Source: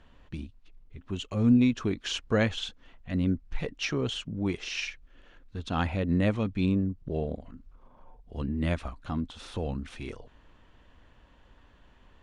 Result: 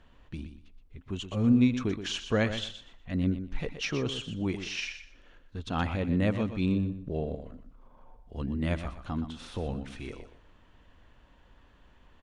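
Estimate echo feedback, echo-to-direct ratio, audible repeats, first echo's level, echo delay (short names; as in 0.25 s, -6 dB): 22%, -10.0 dB, 2, -10.0 dB, 0.122 s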